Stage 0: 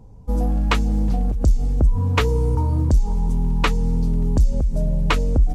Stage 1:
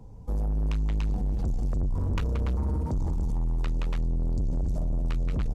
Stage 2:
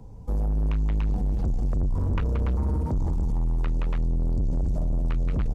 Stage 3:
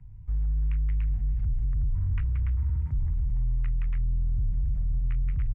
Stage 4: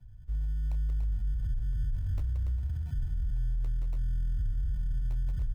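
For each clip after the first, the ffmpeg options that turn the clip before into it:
-filter_complex "[0:a]aecho=1:1:174.9|288.6:0.316|0.631,acrossover=split=140[s0][s1];[s1]acompressor=threshold=0.0355:ratio=6[s2];[s0][s2]amix=inputs=2:normalize=0,asoftclip=type=tanh:threshold=0.075,volume=0.841"
-filter_complex "[0:a]acrossover=split=2800[s0][s1];[s1]acompressor=threshold=0.00126:ratio=4:attack=1:release=60[s2];[s0][s2]amix=inputs=2:normalize=0,volume=1.33"
-af "firequalizer=gain_entry='entry(120,0);entry(200,-17);entry(470,-30);entry(1300,-11);entry(2000,-1);entry(4100,-22)':delay=0.05:min_phase=1,volume=0.841"
-filter_complex "[0:a]flanger=delay=3.1:depth=5.4:regen=-76:speed=0.88:shape=sinusoidal,acrossover=split=140[s0][s1];[s1]acrusher=samples=27:mix=1:aa=0.000001[s2];[s0][s2]amix=inputs=2:normalize=0"

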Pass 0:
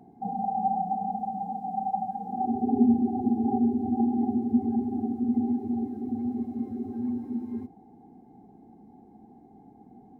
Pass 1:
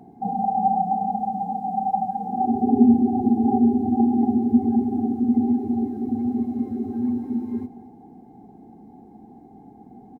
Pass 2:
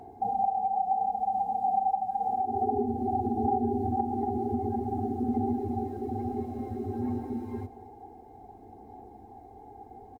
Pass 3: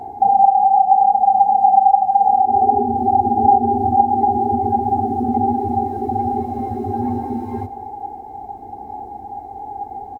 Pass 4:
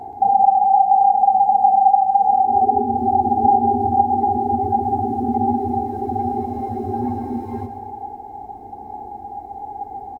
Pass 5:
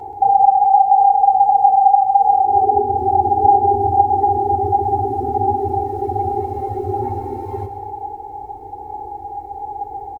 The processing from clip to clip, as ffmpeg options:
-af "aecho=1:1:226:0.158,volume=2"
-af "firequalizer=gain_entry='entry(100,0);entry(150,-22);entry(430,-2)':delay=0.05:min_phase=1,acompressor=threshold=0.0355:ratio=12,aphaser=in_gain=1:out_gain=1:delay=2.5:decay=0.2:speed=0.56:type=sinusoidal,volume=1.68"
-filter_complex "[0:a]equalizer=f=820:t=o:w=0.21:g=13.5,asplit=2[s0][s1];[s1]acompressor=threshold=0.0447:ratio=6,volume=0.75[s2];[s0][s2]amix=inputs=2:normalize=0,volume=1.68"
-af "aecho=1:1:129|258|387|516|645|774:0.316|0.164|0.0855|0.0445|0.0231|0.012,volume=0.794"
-af "aecho=1:1:2.2:0.91"

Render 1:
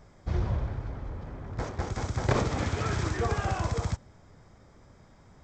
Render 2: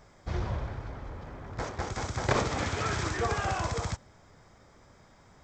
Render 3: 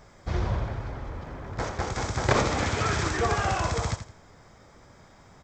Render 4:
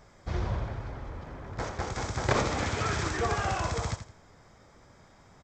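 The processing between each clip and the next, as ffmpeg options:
-af "lowshelf=f=440:g=-7.5,volume=1.41"
-af "aecho=1:1:83|166|249:0.316|0.0791|0.0198,volume=1.58"
-af "aresample=32000,aresample=44100,volume=0.668"

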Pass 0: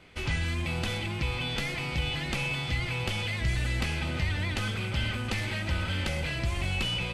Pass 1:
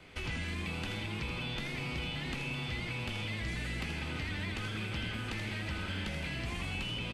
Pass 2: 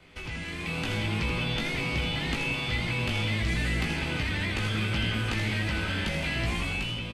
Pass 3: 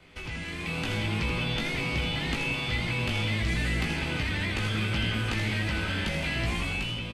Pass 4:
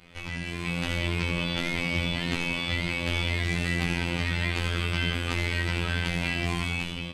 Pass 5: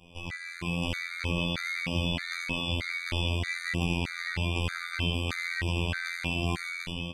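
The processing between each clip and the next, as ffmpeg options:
-filter_complex "[0:a]acrossover=split=350|800|3700[s0][s1][s2][s3];[s0]acompressor=threshold=0.0112:ratio=4[s4];[s1]acompressor=threshold=0.00158:ratio=4[s5];[s2]acompressor=threshold=0.00794:ratio=4[s6];[s3]acompressor=threshold=0.002:ratio=4[s7];[s4][s5][s6][s7]amix=inputs=4:normalize=0,asplit=6[s8][s9][s10][s11][s12][s13];[s9]adelay=81,afreqshift=110,volume=0.447[s14];[s10]adelay=162,afreqshift=220,volume=0.193[s15];[s11]adelay=243,afreqshift=330,volume=0.0822[s16];[s12]adelay=324,afreqshift=440,volume=0.0355[s17];[s13]adelay=405,afreqshift=550,volume=0.0153[s18];[s8][s14][s15][s16][s17][s18]amix=inputs=6:normalize=0"
-filter_complex "[0:a]dynaudnorm=f=250:g=5:m=2.66,asplit=2[s0][s1];[s1]adelay=18,volume=0.562[s2];[s0][s2]amix=inputs=2:normalize=0,volume=0.841"
-af anull
-af "afftfilt=real='hypot(re,im)*cos(PI*b)':imag='0':win_size=2048:overlap=0.75,volume=1.68"
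-af "afftfilt=real='re*gt(sin(2*PI*1.6*pts/sr)*(1-2*mod(floor(b*sr/1024/1200),2)),0)':imag='im*gt(sin(2*PI*1.6*pts/sr)*(1-2*mod(floor(b*sr/1024/1200),2)),0)':win_size=1024:overlap=0.75"

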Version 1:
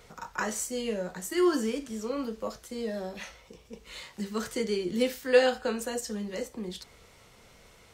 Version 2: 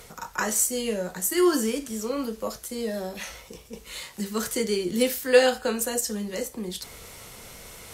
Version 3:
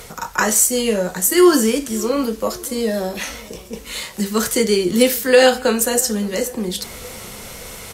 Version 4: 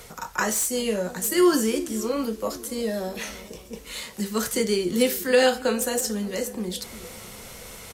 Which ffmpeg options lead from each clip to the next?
-af "equalizer=f=12000:w=0.68:g=13,areverse,acompressor=mode=upward:threshold=0.0112:ratio=2.5,areverse,volume=1.5"
-filter_complex "[0:a]asplit=2[s0][s1];[s1]adelay=566,lowpass=f=1700:p=1,volume=0.0794,asplit=2[s2][s3];[s3]adelay=566,lowpass=f=1700:p=1,volume=0.54,asplit=2[s4][s5];[s5]adelay=566,lowpass=f=1700:p=1,volume=0.54,asplit=2[s6][s7];[s7]adelay=566,lowpass=f=1700:p=1,volume=0.54[s8];[s0][s2][s4][s6][s8]amix=inputs=5:normalize=0,alimiter=level_in=3.35:limit=0.891:release=50:level=0:latency=1,volume=0.891"
-filter_complex "[0:a]acrossover=split=600|4100[s0][s1][s2];[s0]aecho=1:1:352:0.2[s3];[s2]asoftclip=type=hard:threshold=0.168[s4];[s3][s1][s4]amix=inputs=3:normalize=0,volume=0.447"

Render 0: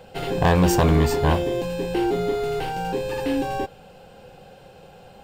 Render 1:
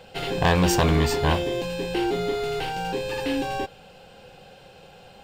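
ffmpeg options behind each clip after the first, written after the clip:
-af "equalizer=f=3500:t=o:w=2.4:g=7,volume=0.708"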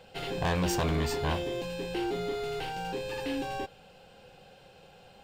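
-af "asoftclip=type=tanh:threshold=0.178,volume=0.473"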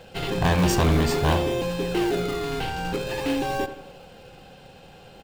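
-filter_complex "[0:a]asplit=2[s0][s1];[s1]acrusher=samples=36:mix=1:aa=0.000001:lfo=1:lforange=57.6:lforate=0.48,volume=0.473[s2];[s0][s2]amix=inputs=2:normalize=0,asplit=2[s3][s4];[s4]adelay=85,lowpass=f=2600:p=1,volume=0.282,asplit=2[s5][s6];[s6]adelay=85,lowpass=f=2600:p=1,volume=0.49,asplit=2[s7][s8];[s8]adelay=85,lowpass=f=2600:p=1,volume=0.49,asplit=2[s9][s10];[s10]adelay=85,lowpass=f=2600:p=1,volume=0.49,asplit=2[s11][s12];[s12]adelay=85,lowpass=f=2600:p=1,volume=0.49[s13];[s3][s5][s7][s9][s11][s13]amix=inputs=6:normalize=0,volume=2"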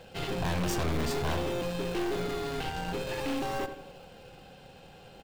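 -af "aeval=exprs='(tanh(20*val(0)+0.5)-tanh(0.5))/20':c=same,acrusher=bits=8:mode=log:mix=0:aa=0.000001,volume=0.794"

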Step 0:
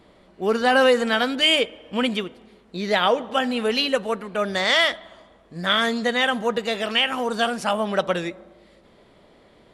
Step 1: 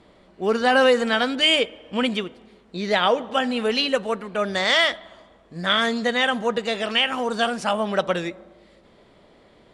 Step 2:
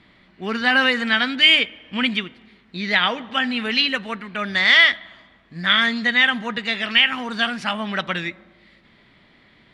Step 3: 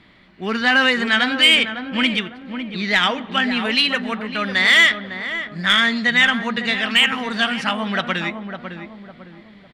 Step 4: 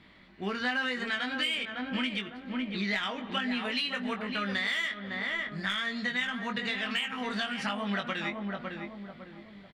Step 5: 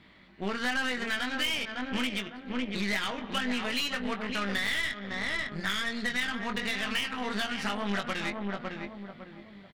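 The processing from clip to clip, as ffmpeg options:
-af "lowpass=f=9800:w=0.5412,lowpass=f=9800:w=1.3066"
-af "equalizer=f=125:t=o:w=1:g=5,equalizer=f=250:t=o:w=1:g=4,equalizer=f=500:t=o:w=1:g=-9,equalizer=f=2000:t=o:w=1:g=11,equalizer=f=4000:t=o:w=1:g=6,equalizer=f=8000:t=o:w=1:g=-7,volume=0.708"
-filter_complex "[0:a]acontrast=52,asplit=2[s0][s1];[s1]adelay=554,lowpass=f=960:p=1,volume=0.501,asplit=2[s2][s3];[s3]adelay=554,lowpass=f=960:p=1,volume=0.43,asplit=2[s4][s5];[s5]adelay=554,lowpass=f=960:p=1,volume=0.43,asplit=2[s6][s7];[s7]adelay=554,lowpass=f=960:p=1,volume=0.43,asplit=2[s8][s9];[s9]adelay=554,lowpass=f=960:p=1,volume=0.43[s10];[s0][s2][s4][s6][s8][s10]amix=inputs=6:normalize=0,volume=0.668"
-filter_complex "[0:a]acompressor=threshold=0.0708:ratio=10,asplit=2[s0][s1];[s1]adelay=20,volume=0.562[s2];[s0][s2]amix=inputs=2:normalize=0,volume=0.473"
-af "aeval=exprs='0.126*(cos(1*acos(clip(val(0)/0.126,-1,1)))-cos(1*PI/2))+0.0126*(cos(8*acos(clip(val(0)/0.126,-1,1)))-cos(8*PI/2))':c=same"

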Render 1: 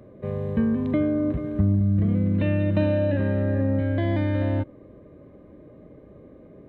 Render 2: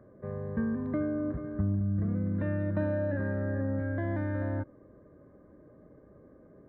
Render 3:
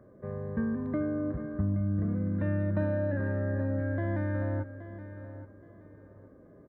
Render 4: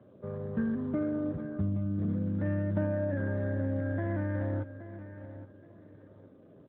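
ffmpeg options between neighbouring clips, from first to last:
-af "highshelf=f=2100:t=q:w=3:g=-10,volume=0.376"
-af "aecho=1:1:823|1646|2469:0.224|0.0582|0.0151"
-ar 8000 -c:a libopencore_amrnb -b:a 12200

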